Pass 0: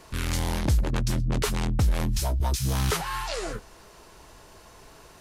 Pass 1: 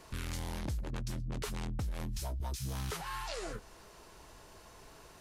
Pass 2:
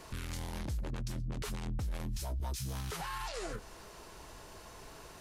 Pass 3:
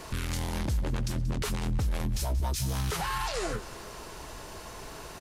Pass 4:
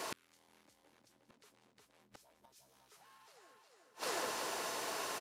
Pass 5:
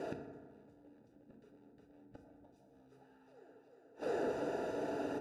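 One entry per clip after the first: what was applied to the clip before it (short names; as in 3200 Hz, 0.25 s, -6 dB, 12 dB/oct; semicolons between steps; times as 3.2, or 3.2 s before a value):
compressor 3:1, threshold -32 dBFS, peak gain reduction 10 dB; gain -5 dB
limiter -34.5 dBFS, peak gain reduction 9 dB; gain +4 dB
feedback echo 0.182 s, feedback 57%, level -16.5 dB; gain +8 dB
HPF 370 Hz 12 dB/oct; feedback echo 0.36 s, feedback 40%, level -3 dB; flipped gate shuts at -28 dBFS, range -34 dB; gain +2.5 dB
running mean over 41 samples; reverb RT60 1.6 s, pre-delay 4 ms, DRR 3.5 dB; gain +8.5 dB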